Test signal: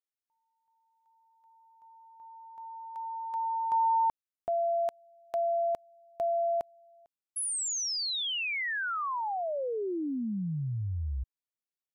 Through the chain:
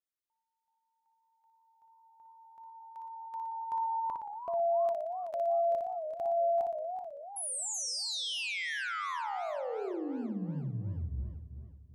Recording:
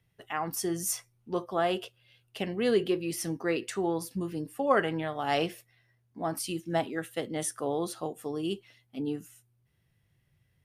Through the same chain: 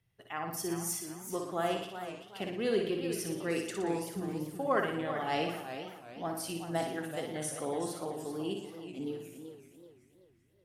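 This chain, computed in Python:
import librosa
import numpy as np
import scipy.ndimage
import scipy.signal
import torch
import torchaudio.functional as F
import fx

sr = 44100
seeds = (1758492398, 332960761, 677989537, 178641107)

y = fx.room_flutter(x, sr, wall_m=10.1, rt60_s=0.66)
y = fx.echo_warbled(y, sr, ms=382, feedback_pct=40, rate_hz=2.8, cents=157, wet_db=-9.5)
y = y * 10.0 ** (-5.5 / 20.0)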